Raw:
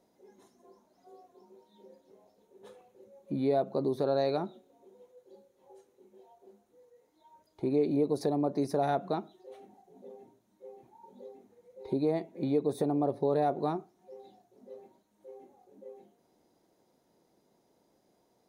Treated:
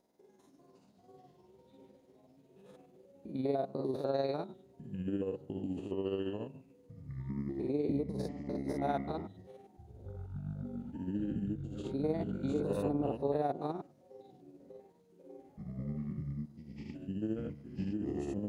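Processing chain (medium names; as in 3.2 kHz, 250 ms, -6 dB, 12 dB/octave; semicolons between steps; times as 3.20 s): spectrogram pixelated in time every 100 ms; 8.03–8.82 s: compressor with a negative ratio -37 dBFS, ratio -0.5; tremolo 20 Hz, depth 49%; ever faster or slower copies 196 ms, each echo -6 st, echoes 3; trim -1.5 dB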